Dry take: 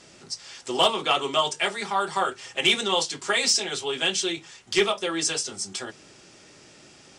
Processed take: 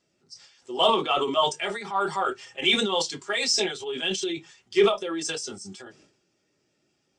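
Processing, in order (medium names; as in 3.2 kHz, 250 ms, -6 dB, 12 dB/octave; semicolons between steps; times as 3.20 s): Chebyshev shaper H 6 -28 dB, 7 -30 dB, 8 -34 dB, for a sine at -10.5 dBFS; transient shaper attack -2 dB, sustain +10 dB; spectral contrast expander 1.5:1; trim -3 dB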